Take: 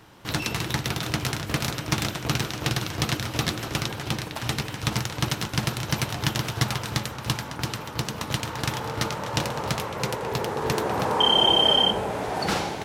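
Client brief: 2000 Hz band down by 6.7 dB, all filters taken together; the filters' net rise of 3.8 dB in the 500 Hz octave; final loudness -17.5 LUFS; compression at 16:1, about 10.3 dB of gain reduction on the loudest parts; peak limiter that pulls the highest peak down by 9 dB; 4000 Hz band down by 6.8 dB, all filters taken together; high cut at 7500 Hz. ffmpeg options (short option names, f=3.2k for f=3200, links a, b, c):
-af "lowpass=7.5k,equalizer=f=500:t=o:g=5,equalizer=f=2k:t=o:g=-7.5,equalizer=f=4k:t=o:g=-6,acompressor=threshold=-28dB:ratio=16,volume=17.5dB,alimiter=limit=-4.5dB:level=0:latency=1"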